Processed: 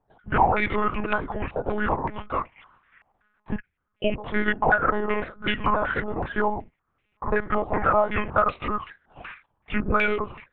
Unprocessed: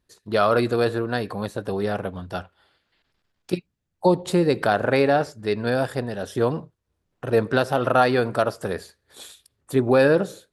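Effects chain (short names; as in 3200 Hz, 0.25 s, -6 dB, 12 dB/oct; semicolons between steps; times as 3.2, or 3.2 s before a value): repeated pitch sweeps -8.5 st, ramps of 0.523 s; tilt shelf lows -6 dB; compressor 12:1, threshold -25 dBFS, peak gain reduction 12.5 dB; monotone LPC vocoder at 8 kHz 210 Hz; stepped low-pass 5.3 Hz 780–2500 Hz; gain +5 dB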